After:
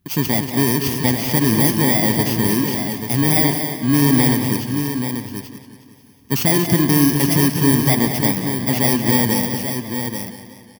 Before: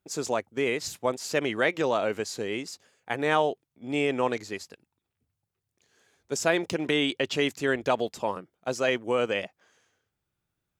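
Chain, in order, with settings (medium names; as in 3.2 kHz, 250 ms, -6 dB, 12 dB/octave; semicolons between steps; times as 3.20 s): bit-reversed sample order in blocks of 32 samples; ten-band graphic EQ 125 Hz +9 dB, 250 Hz +7 dB, 500 Hz -10 dB, 8 kHz -7 dB; in parallel at +3 dB: peak limiter -21 dBFS, peak gain reduction 11 dB; on the sum: bass shelf 180 Hz +4 dB; on a send: multi-tap echo 75/236/835 ms -17.5/-8/-7.5 dB; on the sum: modulated delay 181 ms, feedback 60%, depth 76 cents, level -11.5 dB; trim +4 dB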